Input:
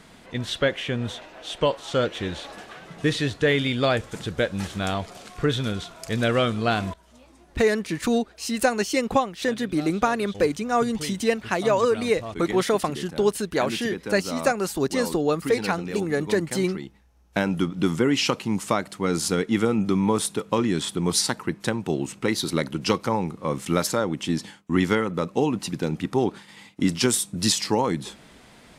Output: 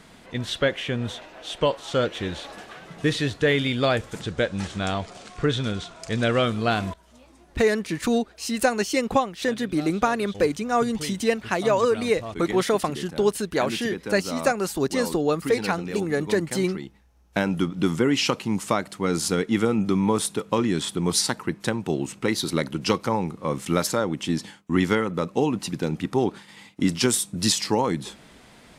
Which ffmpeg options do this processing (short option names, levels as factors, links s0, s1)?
-filter_complex "[0:a]asettb=1/sr,asplit=3[s0][s1][s2];[s0]atrim=end=4.214[s3];[s1]atrim=start=4.21:end=6.43,asetpts=PTS-STARTPTS,afade=t=in:d=0.004:c=qsin,afade=t=out:st=2.216:d=0.004:c=qsin,lowpass=f=9100:w=0.5412,lowpass=f=9100:w=1.3066[s4];[s2]atrim=start=6.426[s5];[s3][s4]acrossfade=d=0.004:c1=hsin:c2=qsin[s6];[s6][s5]acrossfade=d=0.004:c1=qsin:c2=hsin"